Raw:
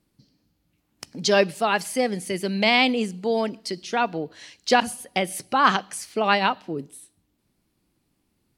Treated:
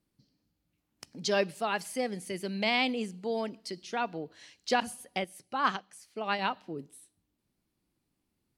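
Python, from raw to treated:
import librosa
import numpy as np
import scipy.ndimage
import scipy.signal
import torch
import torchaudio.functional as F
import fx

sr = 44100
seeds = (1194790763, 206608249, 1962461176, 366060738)

y = fx.upward_expand(x, sr, threshold_db=-32.0, expansion=1.5, at=(5.24, 6.39))
y = y * librosa.db_to_amplitude(-9.0)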